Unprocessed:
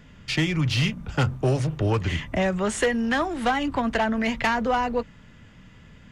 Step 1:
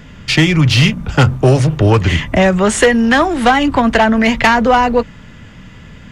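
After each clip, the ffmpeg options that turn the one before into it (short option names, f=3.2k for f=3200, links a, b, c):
-af "acontrast=87,volume=5.5dB"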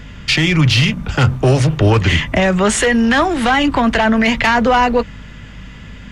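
-filter_complex "[0:a]equalizer=f=2.9k:w=0.47:g=4,acrossover=split=120[a][b];[b]alimiter=limit=-4.5dB:level=0:latency=1:release=17[c];[a][c]amix=inputs=2:normalize=0,aeval=exprs='val(0)+0.02*(sin(2*PI*50*n/s)+sin(2*PI*2*50*n/s)/2+sin(2*PI*3*50*n/s)/3+sin(2*PI*4*50*n/s)/4+sin(2*PI*5*50*n/s)/5)':c=same,volume=-1dB"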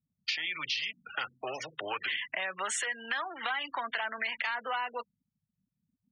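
-af "afftfilt=real='re*gte(hypot(re,im),0.1)':imag='im*gte(hypot(re,im),0.1)':win_size=1024:overlap=0.75,highpass=1.1k,acompressor=threshold=-22dB:ratio=6,volume=-8.5dB"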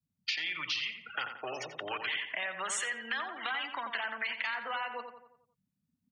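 -filter_complex "[0:a]adynamicequalizer=threshold=0.00316:dfrequency=610:dqfactor=0.76:tfrequency=610:tqfactor=0.76:attack=5:release=100:ratio=0.375:range=2:mode=cutabove:tftype=bell,asplit=2[a][b];[b]adelay=88,lowpass=f=2.3k:p=1,volume=-6.5dB,asplit=2[c][d];[d]adelay=88,lowpass=f=2.3k:p=1,volume=0.51,asplit=2[e][f];[f]adelay=88,lowpass=f=2.3k:p=1,volume=0.51,asplit=2[g][h];[h]adelay=88,lowpass=f=2.3k:p=1,volume=0.51,asplit=2[i][j];[j]adelay=88,lowpass=f=2.3k:p=1,volume=0.51,asplit=2[k][l];[l]adelay=88,lowpass=f=2.3k:p=1,volume=0.51[m];[c][e][g][i][k][m]amix=inputs=6:normalize=0[n];[a][n]amix=inputs=2:normalize=0,volume=-1dB"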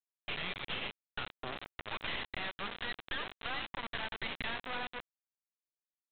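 -af "highpass=220,aresample=8000,acrusher=bits=3:dc=4:mix=0:aa=0.000001,aresample=44100,volume=-1dB"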